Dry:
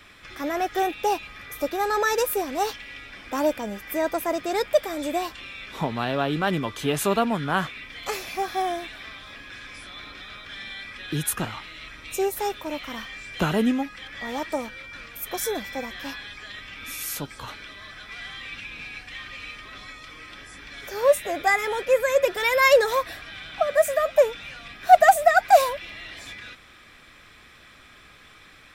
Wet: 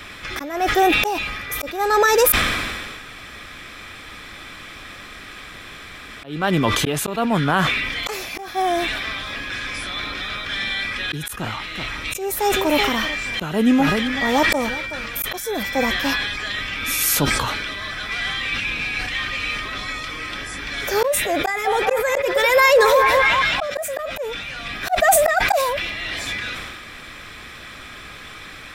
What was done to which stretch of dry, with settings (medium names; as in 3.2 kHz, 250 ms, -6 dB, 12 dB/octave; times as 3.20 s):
2.32–6.24 s: room tone
11.37–15.64 s: delay 380 ms -16.5 dB
21.40–23.83 s: repeats whose band climbs or falls 203 ms, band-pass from 710 Hz, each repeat 0.7 oct, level -4.5 dB
whole clip: slow attack 601 ms; loudness maximiser +18.5 dB; decay stretcher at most 31 dB/s; trim -6 dB